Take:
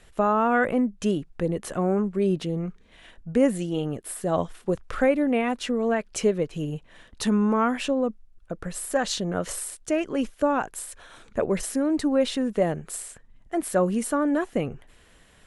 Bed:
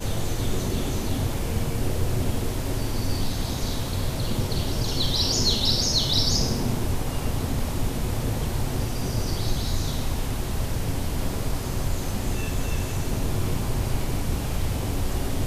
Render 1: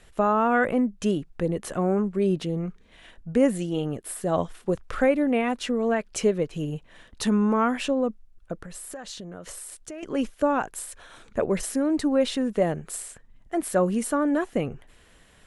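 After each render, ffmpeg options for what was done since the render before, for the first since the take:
-filter_complex "[0:a]asettb=1/sr,asplit=3[a][b][c];[a]atrim=end=8.614[d];[b]atrim=start=8.61:end=10.03,asetpts=PTS-STARTPTS,afade=t=in:d=0.004:c=qsin,afade=t=out:st=1.416:d=0.004:c=qsin,acompressor=threshold=-36dB:ratio=5:attack=3.2:release=140:knee=1:detection=peak[e];[c]atrim=start=10.026[f];[d][e]acrossfade=d=0.004:c1=hsin:c2=qsin[g];[g][f]acrossfade=d=0.004:c1=qsin:c2=hsin"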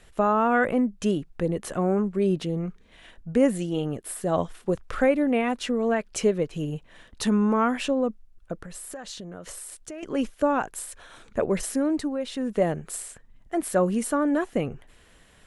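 -filter_complex "[0:a]asplit=3[a][b][c];[a]atrim=end=12.18,asetpts=PTS-STARTPTS,afade=t=out:st=11.86:d=0.32:silence=0.375837[d];[b]atrim=start=12.18:end=12.25,asetpts=PTS-STARTPTS,volume=-8.5dB[e];[c]atrim=start=12.25,asetpts=PTS-STARTPTS,afade=t=in:d=0.32:silence=0.375837[f];[d][e][f]concat=n=3:v=0:a=1"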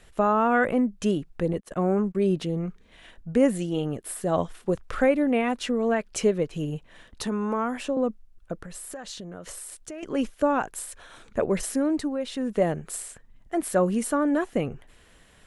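-filter_complex "[0:a]asettb=1/sr,asplit=3[a][b][c];[a]atrim=end=1.534[d];[b]atrim=start=1.53:end=2.15,asetpts=PTS-STARTPTS,afade=t=in:d=0.004:c=qsin,afade=t=out:st=0.616:d=0.004:c=qsin,agate=range=-35dB:threshold=-35dB:ratio=16:release=100:detection=peak[e];[c]atrim=start=2.146[f];[d][e]acrossfade=d=0.004:c1=hsin:c2=qsin[g];[g][f]acrossfade=d=0.004:c1=qsin:c2=hsin,asettb=1/sr,asplit=3[h][i][j];[h]atrim=end=7.224[k];[i]atrim=start=7.22:end=7.97,asetpts=PTS-STARTPTS,afade=t=in:d=0.004:c=qsin,afade=t=out:st=0.746:d=0.004:c=qsin,acrossover=split=120|350|1400|5700[l][m][n][o][p];[l]acompressor=threshold=-48dB:ratio=3[q];[m]acompressor=threshold=-34dB:ratio=3[r];[n]acompressor=threshold=-26dB:ratio=3[s];[o]acompressor=threshold=-42dB:ratio=3[t];[p]acompressor=threshold=-44dB:ratio=3[u];[q][r][s][t][u]amix=inputs=5:normalize=0[v];[j]atrim=start=7.966[w];[k][v]acrossfade=d=0.004:c1=hsin:c2=qsin[x];[x][w]acrossfade=d=0.004:c1=qsin:c2=hsin"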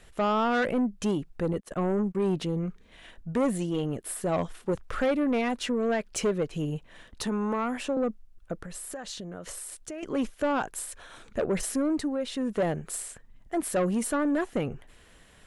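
-af "asoftclip=type=tanh:threshold=-20.5dB"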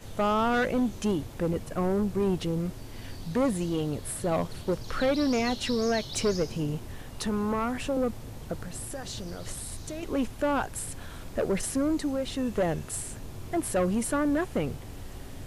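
-filter_complex "[1:a]volume=-15.5dB[a];[0:a][a]amix=inputs=2:normalize=0"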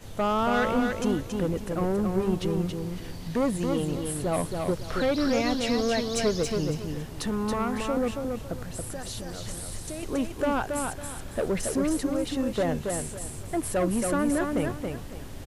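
-af "aecho=1:1:277|554|831|1108:0.596|0.161|0.0434|0.0117"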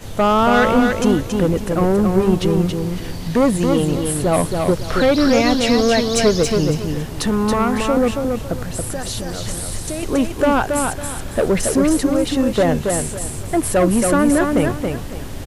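-af "volume=10.5dB"

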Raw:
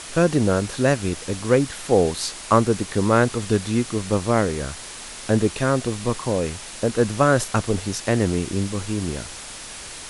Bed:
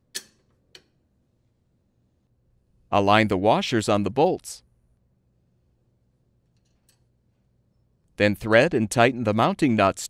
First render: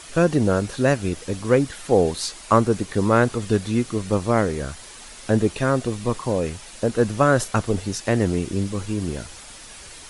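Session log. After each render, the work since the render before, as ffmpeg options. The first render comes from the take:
-af "afftdn=nr=7:nf=-37"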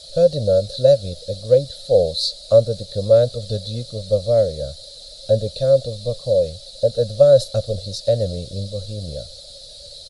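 -af "firequalizer=gain_entry='entry(130,0);entry(250,-15);entry(360,-19);entry(550,13);entry(920,-29);entry(1300,-19);entry(2000,-22);entry(2800,-15);entry(4000,14);entry(6000,-6)':delay=0.05:min_phase=1"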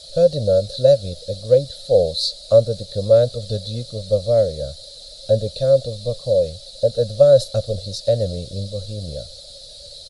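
-af anull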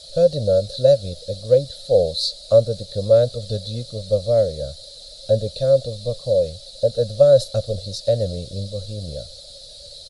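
-af "volume=-1dB"

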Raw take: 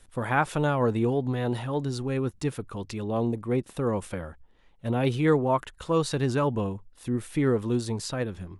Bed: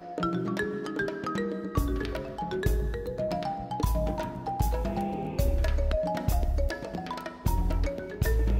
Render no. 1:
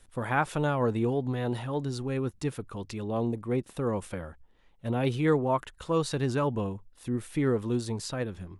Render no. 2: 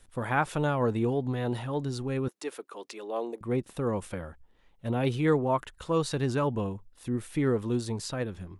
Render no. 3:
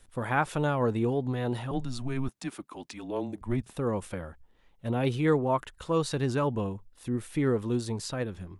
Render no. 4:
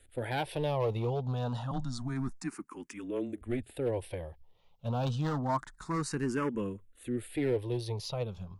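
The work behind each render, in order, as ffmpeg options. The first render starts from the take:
-af "volume=-2.5dB"
-filter_complex "[0:a]asettb=1/sr,asplit=3[a][b][c];[a]atrim=end=2.284[d];[b]atrim=start=2.28:end=3.41,asetpts=PTS-STARTPTS,afade=t=in:d=0.004:c=qsin,afade=t=out:st=1.126:d=0.004:c=qsin,highpass=f=350:w=0.5412,highpass=f=350:w=1.3066[e];[c]atrim=start=3.406[f];[d][e]acrossfade=d=0.004:c1=hsin:c2=qsin[g];[g][f]acrossfade=d=0.004:c1=qsin:c2=hsin"
-filter_complex "[0:a]asettb=1/sr,asplit=3[a][b][c];[a]atrim=end=1.714[d];[b]atrim=start=1.71:end=3.71,asetpts=PTS-STARTPTS,afade=t=in:d=0.004:c=qsin,afade=t=out:st=1.996:d=0.004:c=qsin,afreqshift=-130[e];[c]atrim=start=3.706[f];[d][e]acrossfade=d=0.004:c1=hsin:c2=qsin[g];[g][f]acrossfade=d=0.004:c1=qsin:c2=hsin"
-filter_complex "[0:a]asoftclip=type=hard:threshold=-23dB,asplit=2[a][b];[b]afreqshift=0.28[c];[a][c]amix=inputs=2:normalize=1"

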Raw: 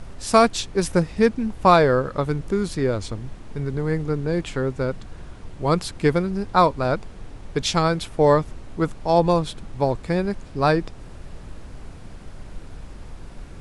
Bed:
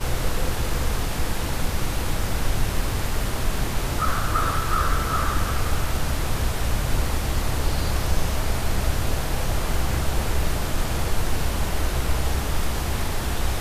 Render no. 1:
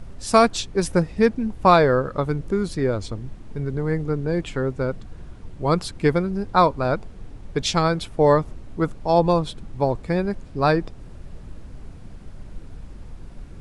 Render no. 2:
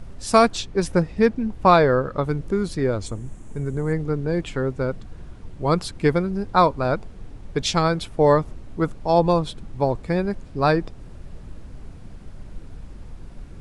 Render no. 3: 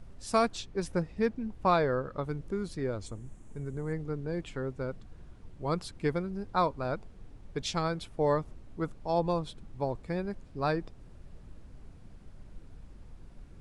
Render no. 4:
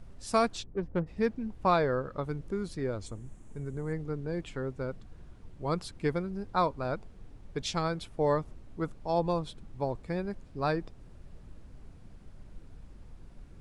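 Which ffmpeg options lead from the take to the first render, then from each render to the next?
-af "afftdn=nr=6:nf=-40"
-filter_complex "[0:a]asettb=1/sr,asplit=3[a][b][c];[a]atrim=end=0.554[d];[b]atrim=start=0.55:end=2.24,asetpts=PTS-STARTPTS,afade=t=in:d=0.004:c=qsin,afade=t=out:st=1.686:d=0.004:c=qsin,highshelf=f=9.3k:g=-9.5[e];[c]atrim=start=2.236[f];[d][e]acrossfade=d=0.004:c1=hsin:c2=qsin[g];[g][f]acrossfade=d=0.004:c1=qsin:c2=hsin,asettb=1/sr,asplit=3[h][i][j];[h]atrim=end=3.064[k];[i]atrim=start=3.06:end=3.93,asetpts=PTS-STARTPTS,afade=t=in:d=0.004:c=qsin,afade=t=out:st=0.866:d=0.004:c=qsin,highshelf=f=5.9k:t=q:w=3:g=7.5[l];[j]atrim=start=3.926[m];[k][l]acrossfade=d=0.004:c1=hsin:c2=qsin[n];[n][m]acrossfade=d=0.004:c1=qsin:c2=hsin"
-af "volume=-11dB"
-filter_complex "[0:a]asplit=3[a][b][c];[a]afade=t=out:st=0.62:d=0.02[d];[b]adynamicsmooth=sensitivity=1.5:basefreq=770,afade=t=in:st=0.62:d=0.02,afade=t=out:st=1.06:d=0.02[e];[c]afade=t=in:st=1.06:d=0.02[f];[d][e][f]amix=inputs=3:normalize=0"

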